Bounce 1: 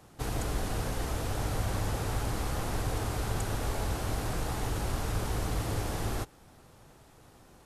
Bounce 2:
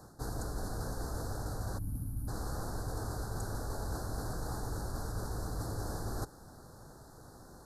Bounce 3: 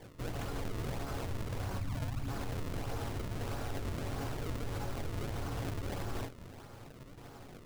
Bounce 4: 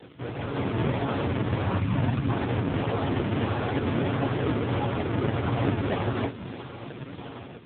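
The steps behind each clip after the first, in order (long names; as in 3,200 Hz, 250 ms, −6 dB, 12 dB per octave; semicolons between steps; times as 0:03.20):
elliptic band-stop filter 1,600–4,200 Hz, stop band 60 dB; gain on a spectral selection 0:01.78–0:02.28, 310–9,300 Hz −23 dB; reversed playback; downward compressor 6 to 1, threshold −38 dBFS, peak gain reduction 12 dB; reversed playback; level +3.5 dB
resonators tuned to a chord F#2 major, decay 0.22 s; brickwall limiter −42 dBFS, peak gain reduction 6 dB; sample-and-hold swept by an LFO 32×, swing 160% 1.6 Hz; level +13.5 dB
background noise blue −50 dBFS; automatic gain control gain up to 9 dB; level +7 dB; AMR narrowband 5.9 kbit/s 8,000 Hz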